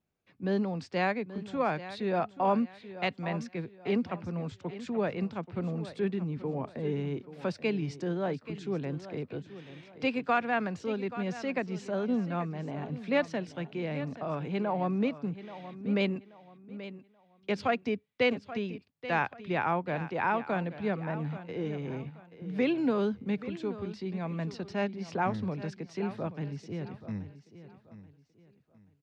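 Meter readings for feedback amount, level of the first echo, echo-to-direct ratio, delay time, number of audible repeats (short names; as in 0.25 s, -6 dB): 31%, -14.0 dB, -13.5 dB, 0.831 s, 3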